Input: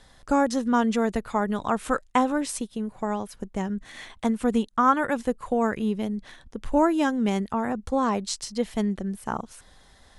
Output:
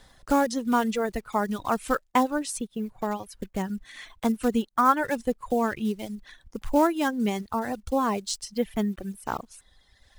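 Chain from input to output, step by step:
one scale factor per block 5 bits
reverb reduction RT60 1.5 s

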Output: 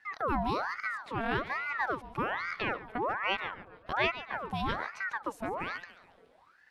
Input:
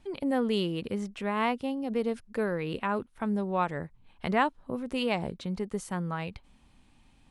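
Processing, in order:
high-shelf EQ 3,200 Hz −10.5 dB
on a send: feedback echo with a high-pass in the loop 154 ms, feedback 54%, high-pass 220 Hz, level −13.5 dB
on the sum: speed change +9%
ring modulator whose carrier an LFO sweeps 1,100 Hz, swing 60%, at 1.2 Hz

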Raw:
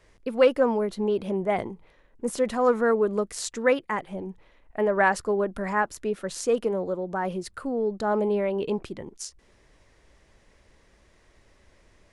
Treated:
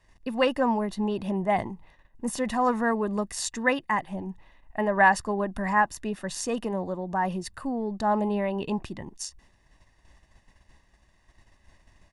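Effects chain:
noise gate −57 dBFS, range −7 dB
comb filter 1.1 ms, depth 62%

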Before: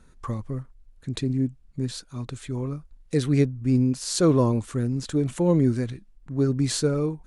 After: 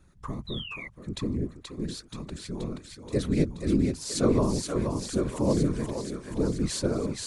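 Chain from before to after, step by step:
feedback echo with a high-pass in the loop 478 ms, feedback 69%, high-pass 500 Hz, level −4 dB
sound drawn into the spectrogram fall, 0:00.47–0:00.88, 2,000–4,000 Hz −35 dBFS
random phases in short frames
level −4.5 dB

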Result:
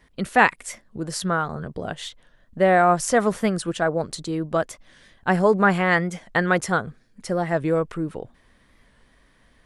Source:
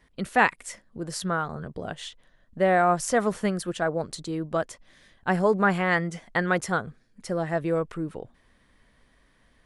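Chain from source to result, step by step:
wow of a warped record 45 rpm, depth 100 cents
level +4 dB

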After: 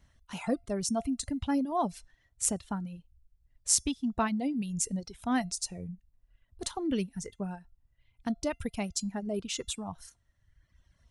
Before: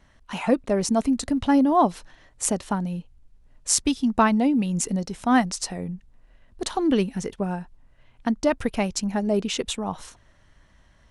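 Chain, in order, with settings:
parametric band 75 Hz +11.5 dB 2.5 octaves
tuned comb filter 690 Hz, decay 0.31 s, mix 60%
reverb reduction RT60 1.3 s
high-shelf EQ 3,900 Hz +10.5 dB
level −4.5 dB

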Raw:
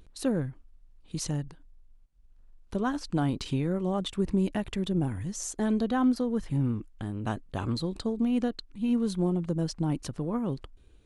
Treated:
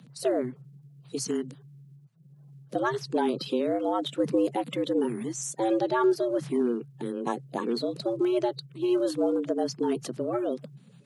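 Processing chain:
spectral magnitudes quantised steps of 30 dB
frequency shifter +120 Hz
level +2 dB

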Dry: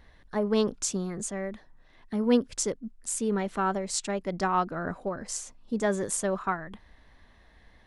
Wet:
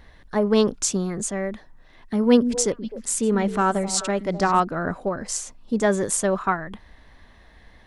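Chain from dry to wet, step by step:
0:02.24–0:04.60: echo through a band-pass that steps 129 ms, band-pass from 220 Hz, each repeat 1.4 octaves, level −7 dB
level +6.5 dB

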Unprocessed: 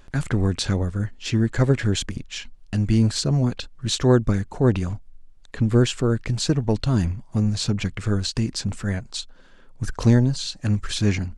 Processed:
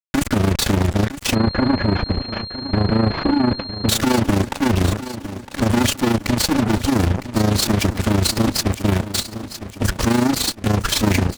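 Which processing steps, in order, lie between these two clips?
lower of the sound and its delayed copy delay 3.5 ms
high-pass filter 70 Hz 12 dB per octave
low-shelf EQ 130 Hz +11.5 dB
fuzz pedal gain 38 dB, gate −34 dBFS
amplitude modulation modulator 27 Hz, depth 55%
repeating echo 959 ms, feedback 48%, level −13 dB
0:01.35–0:03.89: switching amplifier with a slow clock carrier 4,200 Hz
level +1 dB

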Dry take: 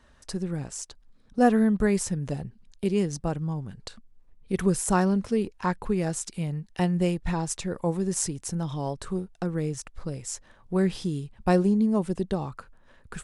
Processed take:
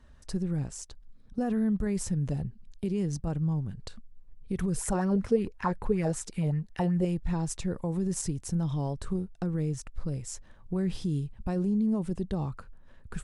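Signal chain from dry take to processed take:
low-shelf EQ 230 Hz +11.5 dB
brickwall limiter −16.5 dBFS, peak gain reduction 11.5 dB
0:04.77–0:07.05: auto-filter bell 5.3 Hz 430–2,100 Hz +13 dB
level −5.5 dB

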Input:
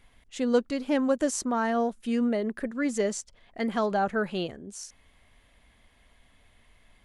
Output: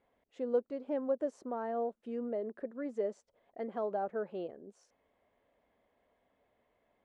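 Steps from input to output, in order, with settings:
in parallel at −1 dB: downward compressor, threshold −33 dBFS, peak gain reduction 14.5 dB
on the sum: resonant band-pass 520 Hz, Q 1.6
level −7.5 dB

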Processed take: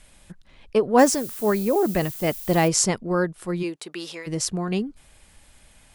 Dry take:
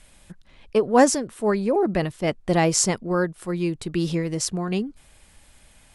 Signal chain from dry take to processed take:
0:00.98–0:02.67: background noise violet −37 dBFS
0:03.62–0:04.26: high-pass filter 320 Hz → 890 Hz 12 dB per octave

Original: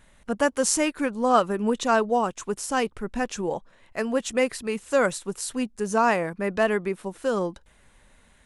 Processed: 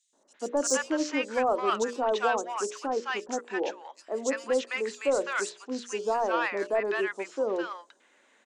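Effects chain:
elliptic band-pass filter 300–7,100 Hz, stop band 40 dB
mains-hum notches 60/120/180/240/300/360/420/480/540/600 Hz
soft clipping −13.5 dBFS, distortion −17 dB
three-band delay without the direct sound highs, lows, mids 130/340 ms, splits 970/4,700 Hz

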